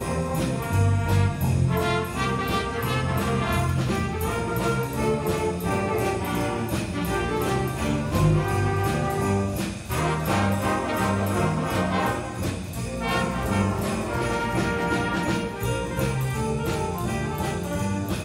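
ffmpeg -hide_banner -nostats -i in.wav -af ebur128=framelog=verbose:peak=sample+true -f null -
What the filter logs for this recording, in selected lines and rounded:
Integrated loudness:
  I:         -25.1 LUFS
  Threshold: -35.1 LUFS
Loudness range:
  LRA:         1.8 LU
  Threshold: -45.1 LUFS
  LRA low:   -25.9 LUFS
  LRA high:  -24.1 LUFS
Sample peak:
  Peak:       -8.7 dBFS
True peak:
  Peak:       -8.7 dBFS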